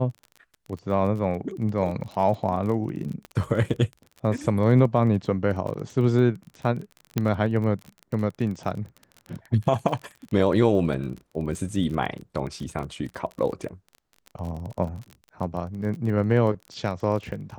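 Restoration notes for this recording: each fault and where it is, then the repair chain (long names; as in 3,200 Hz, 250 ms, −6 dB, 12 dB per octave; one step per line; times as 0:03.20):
surface crackle 29 per second −32 dBFS
0:03.25: click −24 dBFS
0:05.67: drop-out 3.2 ms
0:07.18: click −10 dBFS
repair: click removal
repair the gap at 0:05.67, 3.2 ms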